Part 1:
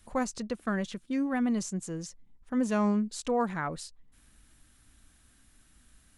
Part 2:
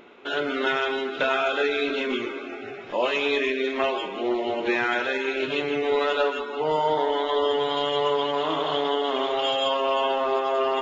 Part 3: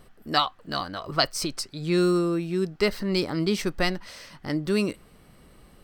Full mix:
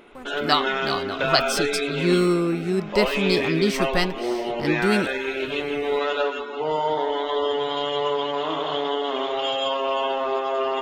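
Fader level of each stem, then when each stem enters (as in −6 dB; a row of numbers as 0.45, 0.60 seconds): −12.5, −0.5, +2.5 decibels; 0.00, 0.00, 0.15 seconds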